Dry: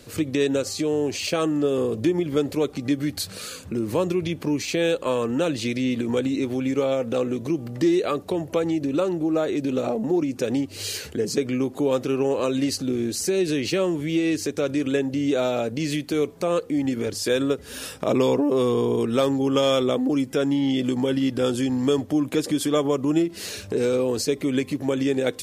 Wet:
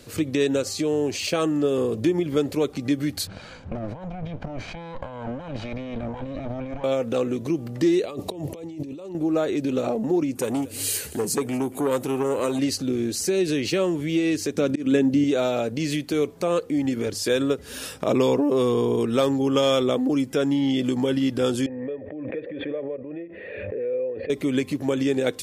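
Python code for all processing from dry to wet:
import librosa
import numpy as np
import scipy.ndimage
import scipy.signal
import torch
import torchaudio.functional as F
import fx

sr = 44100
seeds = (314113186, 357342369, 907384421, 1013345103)

y = fx.chain(x, sr, fx.lower_of_two(delay_ms=1.3),
    fx.over_compress(threshold_db=-31.0, ratio=-1.0),
    fx.spacing_loss(db_at_10k=31), at=(3.27, 6.84))
y = fx.chain(y, sr, fx.peak_eq(hz=1500.0, db=-15.0, octaves=0.42),
    fx.over_compress(threshold_db=-34.0, ratio=-1.0), at=(8.05, 9.15))
y = fx.chain(y, sr, fx.high_shelf_res(hz=7100.0, db=9.5, q=1.5),
    fx.echo_single(ms=232, db=-20.0),
    fx.transformer_sat(knee_hz=740.0), at=(10.35, 12.59))
y = fx.chain(y, sr, fx.peak_eq(hz=220.0, db=12.5, octaves=0.66),
    fx.auto_swell(attack_ms=177.0), at=(14.55, 15.24))
y = fx.chain(y, sr, fx.formant_cascade(vowel='e'),
    fx.pre_swell(db_per_s=29.0), at=(21.66, 24.3))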